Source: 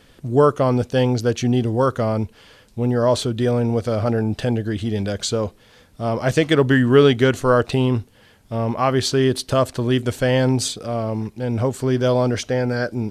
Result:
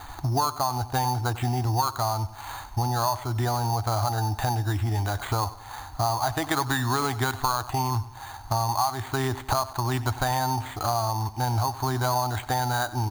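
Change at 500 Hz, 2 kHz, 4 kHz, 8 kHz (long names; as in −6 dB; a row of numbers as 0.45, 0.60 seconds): −14.5, −5.5, −5.0, −1.5 decibels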